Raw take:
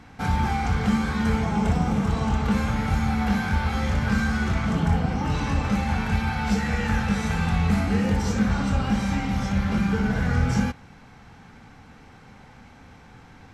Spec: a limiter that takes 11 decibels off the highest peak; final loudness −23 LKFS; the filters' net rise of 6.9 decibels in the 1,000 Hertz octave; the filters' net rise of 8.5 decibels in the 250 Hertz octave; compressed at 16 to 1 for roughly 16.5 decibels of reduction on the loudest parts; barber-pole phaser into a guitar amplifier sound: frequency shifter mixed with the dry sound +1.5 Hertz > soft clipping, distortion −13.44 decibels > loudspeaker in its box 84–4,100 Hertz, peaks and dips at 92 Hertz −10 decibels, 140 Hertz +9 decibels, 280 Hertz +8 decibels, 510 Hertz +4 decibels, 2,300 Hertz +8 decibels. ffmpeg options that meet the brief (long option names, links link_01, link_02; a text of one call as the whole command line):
ffmpeg -i in.wav -filter_complex "[0:a]equalizer=frequency=250:width_type=o:gain=7,equalizer=frequency=1000:width_type=o:gain=8,acompressor=threshold=-29dB:ratio=16,alimiter=level_in=6.5dB:limit=-24dB:level=0:latency=1,volume=-6.5dB,asplit=2[link_01][link_02];[link_02]afreqshift=1.5[link_03];[link_01][link_03]amix=inputs=2:normalize=1,asoftclip=threshold=-39dB,highpass=84,equalizer=frequency=92:width_type=q:width=4:gain=-10,equalizer=frequency=140:width_type=q:width=4:gain=9,equalizer=frequency=280:width_type=q:width=4:gain=8,equalizer=frequency=510:width_type=q:width=4:gain=4,equalizer=frequency=2300:width_type=q:width=4:gain=8,lowpass=frequency=4100:width=0.5412,lowpass=frequency=4100:width=1.3066,volume=20dB" out.wav